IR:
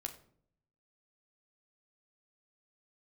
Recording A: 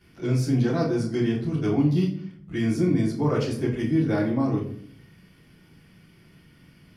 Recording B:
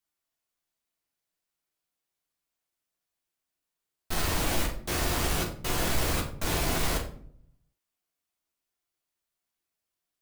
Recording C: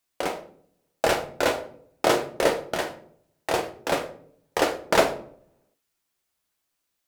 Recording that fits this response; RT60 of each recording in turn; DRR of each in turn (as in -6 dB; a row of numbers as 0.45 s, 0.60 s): C; 0.60 s, 0.60 s, 0.60 s; -10.5 dB, -2.0 dB, 4.0 dB